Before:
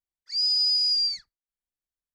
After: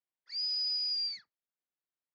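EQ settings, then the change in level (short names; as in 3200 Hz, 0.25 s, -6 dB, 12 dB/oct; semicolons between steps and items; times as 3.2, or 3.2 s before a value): HPF 220 Hz 12 dB/oct; air absorption 230 m; 0.0 dB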